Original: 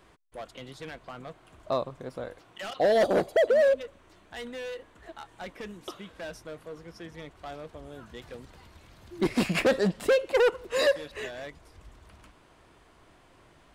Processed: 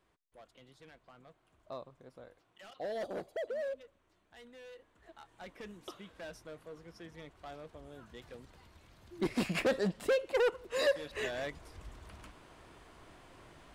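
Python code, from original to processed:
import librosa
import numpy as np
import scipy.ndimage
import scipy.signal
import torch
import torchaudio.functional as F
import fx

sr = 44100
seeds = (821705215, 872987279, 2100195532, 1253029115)

y = fx.gain(x, sr, db=fx.line((4.5, -16.0), (5.67, -7.0), (10.81, -7.0), (11.33, 1.5)))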